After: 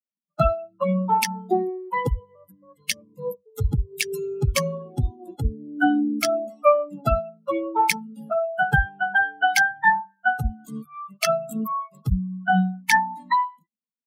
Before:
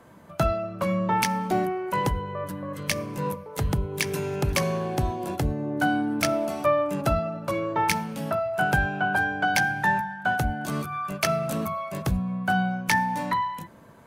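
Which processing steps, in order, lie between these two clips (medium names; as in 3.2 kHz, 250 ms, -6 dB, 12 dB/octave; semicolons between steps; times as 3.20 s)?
expander on every frequency bin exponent 3; trim +8 dB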